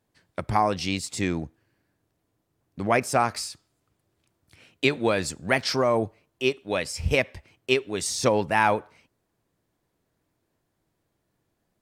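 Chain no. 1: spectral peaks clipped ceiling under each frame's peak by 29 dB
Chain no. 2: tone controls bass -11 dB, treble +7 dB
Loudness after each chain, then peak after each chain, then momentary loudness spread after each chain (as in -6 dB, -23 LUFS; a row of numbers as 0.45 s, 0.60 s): -24.5 LUFS, -25.0 LUFS; -2.5 dBFS, -5.0 dBFS; 12 LU, 13 LU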